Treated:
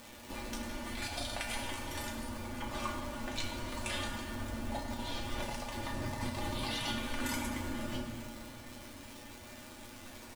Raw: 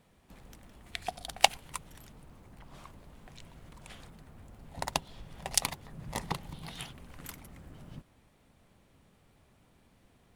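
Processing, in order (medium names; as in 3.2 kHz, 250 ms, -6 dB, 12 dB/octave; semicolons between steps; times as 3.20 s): Bessel low-pass 8.7 kHz; bass shelf 160 Hz -6 dB; comb 3.4 ms, depth 85%; compressor with a negative ratio -47 dBFS, ratio -1; crackle 340 per s -44 dBFS; feedback comb 120 Hz, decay 0.15 s, harmonics all, mix 90%; flutter echo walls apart 6.1 m, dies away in 0.21 s; on a send at -2 dB: reverberation RT60 2.8 s, pre-delay 5 ms; on the sum: trim +11.5 dB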